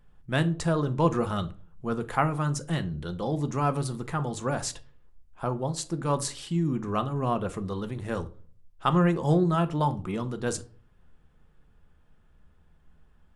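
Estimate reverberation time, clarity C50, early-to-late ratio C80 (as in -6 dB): 0.45 s, 18.0 dB, 23.5 dB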